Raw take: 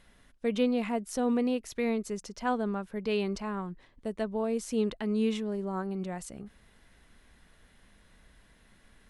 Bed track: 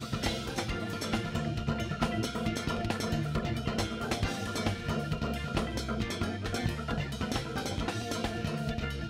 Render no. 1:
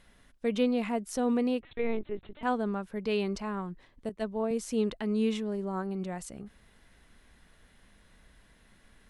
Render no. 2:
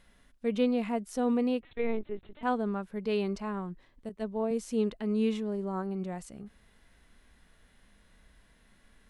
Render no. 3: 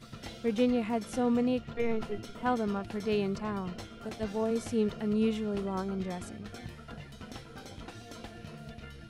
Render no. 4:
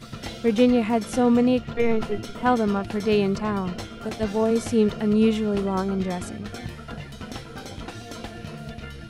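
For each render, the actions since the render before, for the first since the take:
1.61–2.43 s: LPC vocoder at 8 kHz pitch kept; 4.09–4.51 s: three bands expanded up and down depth 100%
harmonic-percussive split percussive -6 dB
add bed track -12 dB
trim +9 dB

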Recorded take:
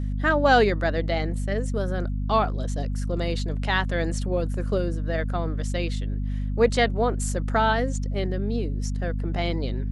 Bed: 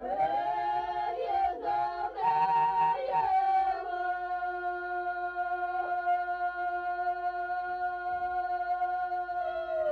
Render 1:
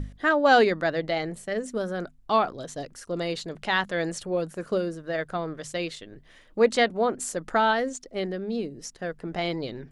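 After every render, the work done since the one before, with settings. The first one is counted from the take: hum notches 50/100/150/200/250 Hz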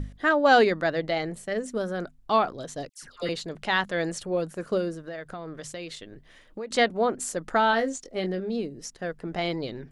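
2.89–3.29 s: phase dispersion lows, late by 139 ms, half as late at 1.3 kHz; 5.08–6.71 s: compression, threshold -33 dBFS; 7.71–8.50 s: doubling 22 ms -7 dB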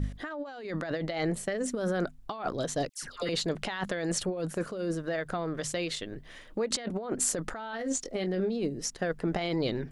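compressor with a negative ratio -32 dBFS, ratio -1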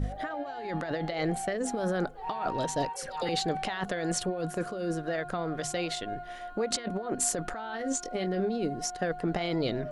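add bed -10 dB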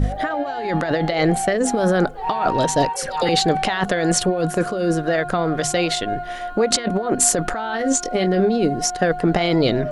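trim +12 dB

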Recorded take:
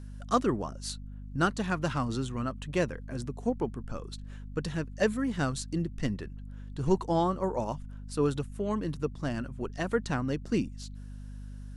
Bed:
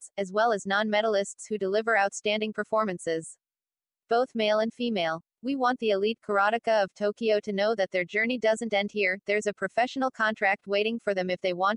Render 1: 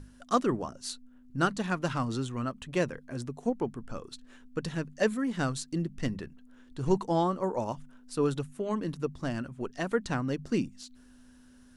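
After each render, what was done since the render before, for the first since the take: hum notches 50/100/150/200 Hz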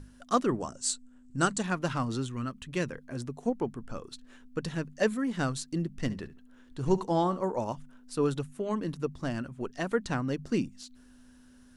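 0.60–1.63 s: resonant low-pass 7.9 kHz, resonance Q 6; 2.26–2.90 s: peaking EQ 680 Hz -8.5 dB 1.2 oct; 6.01–7.51 s: flutter echo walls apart 12 m, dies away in 0.24 s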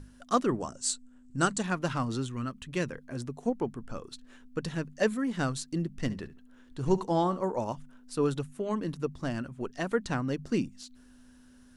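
no audible change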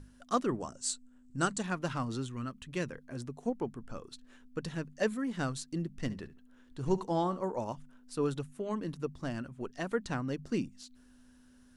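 trim -4 dB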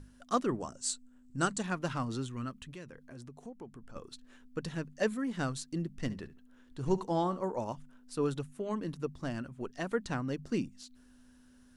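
2.71–3.96 s: compression 2.5:1, threshold -48 dBFS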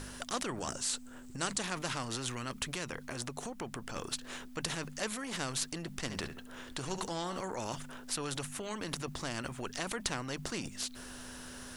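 in parallel at +1 dB: compressor with a negative ratio -43 dBFS, ratio -1; on the sum: spectrum-flattening compressor 2:1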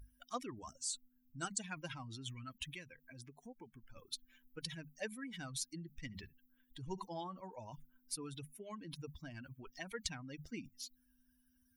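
expander on every frequency bin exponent 3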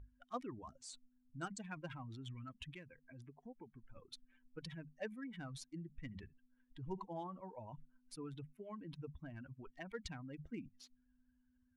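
local Wiener filter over 9 samples; low-pass 1.6 kHz 6 dB/octave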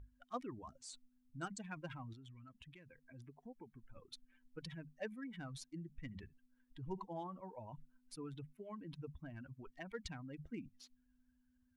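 2.13–3.14 s: compression 3:1, threshold -56 dBFS

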